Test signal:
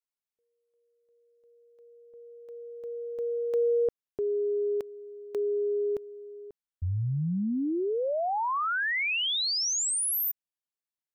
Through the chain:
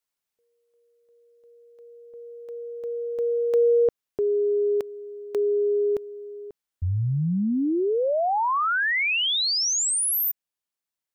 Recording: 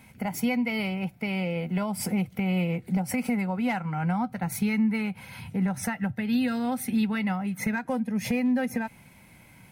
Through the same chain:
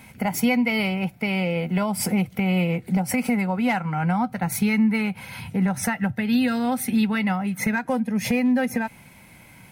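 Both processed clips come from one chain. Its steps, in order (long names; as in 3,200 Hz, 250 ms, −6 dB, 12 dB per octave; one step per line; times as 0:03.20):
low-shelf EQ 350 Hz −2.5 dB
in parallel at 0 dB: speech leveller within 4 dB 2 s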